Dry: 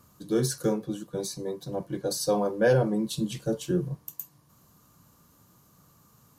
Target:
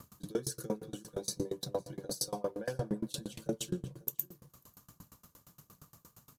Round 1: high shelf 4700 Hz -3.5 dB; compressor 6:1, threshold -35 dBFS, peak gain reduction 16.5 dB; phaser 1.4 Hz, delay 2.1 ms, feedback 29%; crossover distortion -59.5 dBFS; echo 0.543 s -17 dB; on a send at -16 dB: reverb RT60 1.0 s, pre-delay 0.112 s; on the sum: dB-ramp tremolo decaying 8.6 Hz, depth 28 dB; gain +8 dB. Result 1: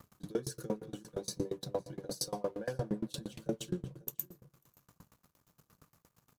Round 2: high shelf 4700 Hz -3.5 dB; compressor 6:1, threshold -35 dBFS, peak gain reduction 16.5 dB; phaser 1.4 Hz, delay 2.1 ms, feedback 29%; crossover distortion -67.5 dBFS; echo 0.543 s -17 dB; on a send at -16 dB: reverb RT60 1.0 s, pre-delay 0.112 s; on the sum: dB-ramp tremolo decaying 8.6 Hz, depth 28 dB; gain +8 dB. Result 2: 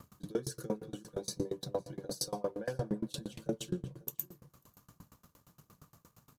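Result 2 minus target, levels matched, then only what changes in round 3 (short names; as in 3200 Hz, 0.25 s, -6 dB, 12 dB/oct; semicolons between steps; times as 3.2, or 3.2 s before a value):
8000 Hz band -2.5 dB
change: high shelf 4700 Hz +4 dB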